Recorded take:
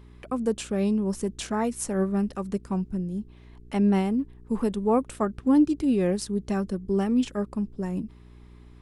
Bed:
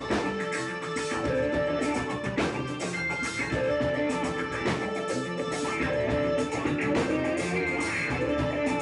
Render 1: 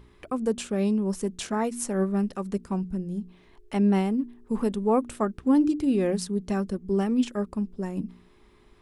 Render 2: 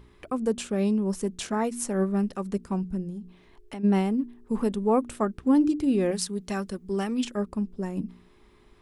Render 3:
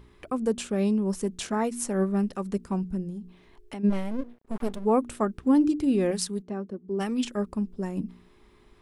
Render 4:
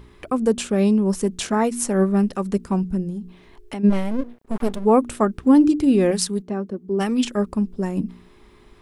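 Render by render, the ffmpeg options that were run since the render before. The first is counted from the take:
ffmpeg -i in.wav -af "bandreject=frequency=60:width_type=h:width=4,bandreject=frequency=120:width_type=h:width=4,bandreject=frequency=180:width_type=h:width=4,bandreject=frequency=240:width_type=h:width=4,bandreject=frequency=300:width_type=h:width=4" out.wav
ffmpeg -i in.wav -filter_complex "[0:a]asplit=3[link_01][link_02][link_03];[link_01]afade=type=out:start_time=3.09:duration=0.02[link_04];[link_02]acompressor=threshold=-33dB:ratio=6:attack=3.2:release=140:knee=1:detection=peak,afade=type=in:start_time=3.09:duration=0.02,afade=type=out:start_time=3.83:duration=0.02[link_05];[link_03]afade=type=in:start_time=3.83:duration=0.02[link_06];[link_04][link_05][link_06]amix=inputs=3:normalize=0,asettb=1/sr,asplit=3[link_07][link_08][link_09];[link_07]atrim=end=6.114[link_10];[link_08]atrim=start=6.11:end=7.25,asetpts=PTS-STARTPTS,afade=type=in:duration=0.004:curve=qsin,afade=type=out:start_time=1.136:duration=0.004:curve=qsin,tiltshelf=frequency=860:gain=-5[link_11];[link_09]atrim=start=7.246[link_12];[link_10][link_11]acrossfade=duration=0.004:curve1=hsin:curve2=qsin[link_13];[link_13][link_12]acrossfade=duration=0.004:curve1=qsin:curve2=hsin" out.wav
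ffmpeg -i in.wav -filter_complex "[0:a]asplit=3[link_01][link_02][link_03];[link_01]afade=type=out:start_time=3.89:duration=0.02[link_04];[link_02]aeval=exprs='max(val(0),0)':channel_layout=same,afade=type=in:start_time=3.89:duration=0.02,afade=type=out:start_time=4.84:duration=0.02[link_05];[link_03]afade=type=in:start_time=4.84:duration=0.02[link_06];[link_04][link_05][link_06]amix=inputs=3:normalize=0,asplit=3[link_07][link_08][link_09];[link_07]afade=type=out:start_time=6.41:duration=0.02[link_10];[link_08]bandpass=frequency=330:width_type=q:width=0.88,afade=type=in:start_time=6.41:duration=0.02,afade=type=out:start_time=6.99:duration=0.02[link_11];[link_09]afade=type=in:start_time=6.99:duration=0.02[link_12];[link_10][link_11][link_12]amix=inputs=3:normalize=0" out.wav
ffmpeg -i in.wav -af "volume=7dB" out.wav

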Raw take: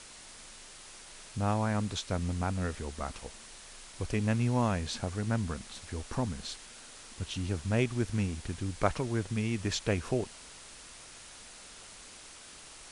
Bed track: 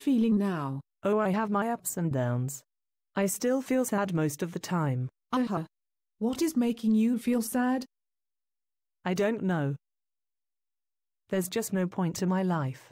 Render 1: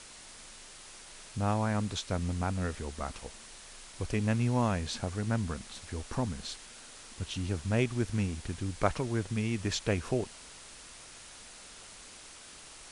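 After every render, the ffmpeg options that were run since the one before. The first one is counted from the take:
ffmpeg -i in.wav -af anull out.wav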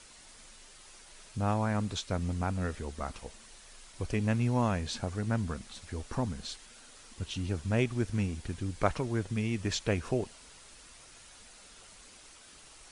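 ffmpeg -i in.wav -af "afftdn=noise_reduction=6:noise_floor=-51" out.wav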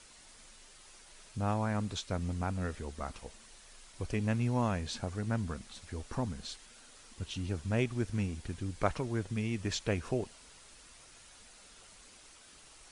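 ffmpeg -i in.wav -af "volume=-2.5dB" out.wav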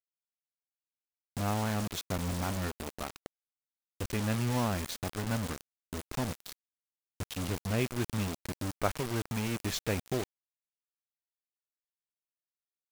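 ffmpeg -i in.wav -af "acrusher=bits=5:mix=0:aa=0.000001" out.wav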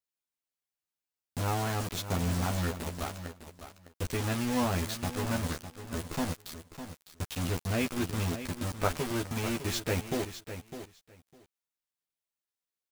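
ffmpeg -i in.wav -filter_complex "[0:a]asplit=2[link_01][link_02];[link_02]adelay=12,volume=-3dB[link_03];[link_01][link_03]amix=inputs=2:normalize=0,asplit=2[link_04][link_05];[link_05]aecho=0:1:605|1210:0.282|0.0423[link_06];[link_04][link_06]amix=inputs=2:normalize=0" out.wav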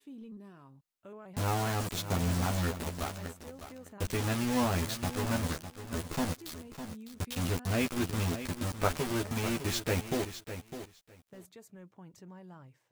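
ffmpeg -i in.wav -i bed.wav -filter_complex "[1:a]volume=-22.5dB[link_01];[0:a][link_01]amix=inputs=2:normalize=0" out.wav

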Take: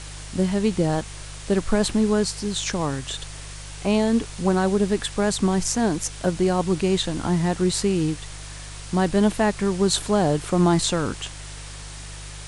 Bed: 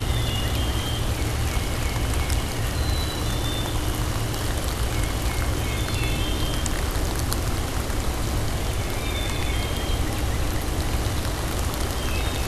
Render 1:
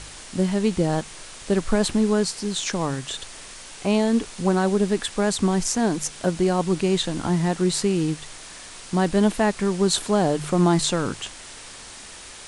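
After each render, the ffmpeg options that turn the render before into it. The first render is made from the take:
ffmpeg -i in.wav -af "bandreject=frequency=50:width_type=h:width=4,bandreject=frequency=100:width_type=h:width=4,bandreject=frequency=150:width_type=h:width=4" out.wav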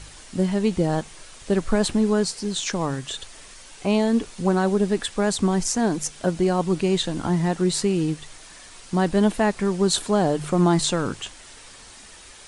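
ffmpeg -i in.wav -af "afftdn=noise_reduction=6:noise_floor=-41" out.wav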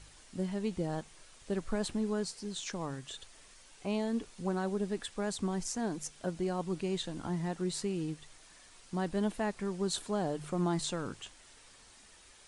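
ffmpeg -i in.wav -af "volume=-13dB" out.wav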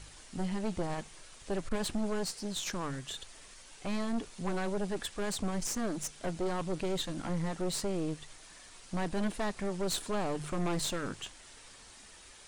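ffmpeg -i in.wav -af "aeval=exprs='0.119*(cos(1*acos(clip(val(0)/0.119,-1,1)))-cos(1*PI/2))+0.015*(cos(5*acos(clip(val(0)/0.119,-1,1)))-cos(5*PI/2))+0.0299*(cos(6*acos(clip(val(0)/0.119,-1,1)))-cos(6*PI/2))':channel_layout=same,asoftclip=type=tanh:threshold=-24.5dB" out.wav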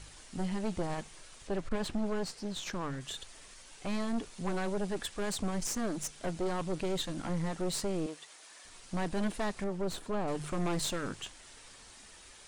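ffmpeg -i in.wav -filter_complex "[0:a]asettb=1/sr,asplit=3[link_01][link_02][link_03];[link_01]atrim=end=1.474[link_04];[link_02]atrim=start=1.47:end=3.01,asetpts=PTS-STARTPTS,afade=type=in:duration=0.004:curve=qsin,afade=type=out:start_time=1.536:duration=0.004:curve=qsin,lowpass=frequency=3800:poles=1[link_05];[link_03]atrim=start=3.006[link_06];[link_04][link_05]acrossfade=duration=0.004:curve1=hsin:curve2=qsin[link_07];[link_07][link_06]acrossfade=duration=0.004:curve1=qsin:curve2=hsin,asettb=1/sr,asplit=3[link_08][link_09][link_10];[link_08]atrim=end=8.064[link_11];[link_09]atrim=start=8.06:end=8.65,asetpts=PTS-STARTPTS,afade=type=in:duration=0.004:curve=qsin,afade=type=out:start_time=0.586:duration=0.004:curve=qsin,highpass=410[link_12];[link_10]atrim=start=8.646[link_13];[link_11][link_12]acrossfade=duration=0.004:curve1=hsin:curve2=qsin[link_14];[link_14][link_13]acrossfade=duration=0.004:curve1=qsin:curve2=hsin,asettb=1/sr,asplit=3[link_15][link_16][link_17];[link_15]atrim=end=9.644[link_18];[link_16]atrim=start=9.64:end=10.28,asetpts=PTS-STARTPTS,afade=type=in:duration=0.004:curve=qsin,afade=type=out:start_time=0.636:duration=0.004:curve=qsin,highshelf=frequency=2400:gain=-11[link_19];[link_17]atrim=start=10.276[link_20];[link_18][link_19]acrossfade=duration=0.004:curve1=hsin:curve2=qsin[link_21];[link_21][link_20]acrossfade=duration=0.004:curve1=qsin:curve2=hsin" out.wav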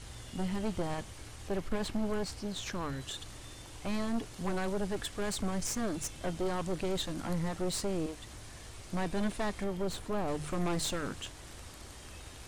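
ffmpeg -i in.wav -i bed.wav -filter_complex "[1:a]volume=-24.5dB[link_01];[0:a][link_01]amix=inputs=2:normalize=0" out.wav

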